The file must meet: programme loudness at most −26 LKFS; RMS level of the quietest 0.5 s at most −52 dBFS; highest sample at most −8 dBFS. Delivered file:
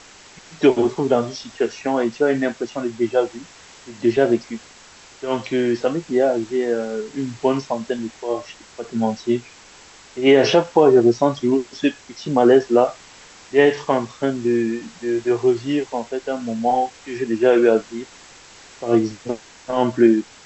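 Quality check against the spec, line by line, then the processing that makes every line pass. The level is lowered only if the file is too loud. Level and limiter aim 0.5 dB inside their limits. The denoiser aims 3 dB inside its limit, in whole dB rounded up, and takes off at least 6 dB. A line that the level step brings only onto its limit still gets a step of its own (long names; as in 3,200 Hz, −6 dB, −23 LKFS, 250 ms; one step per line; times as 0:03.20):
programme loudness −20.0 LKFS: out of spec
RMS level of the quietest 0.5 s −46 dBFS: out of spec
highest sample −3.0 dBFS: out of spec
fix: level −6.5 dB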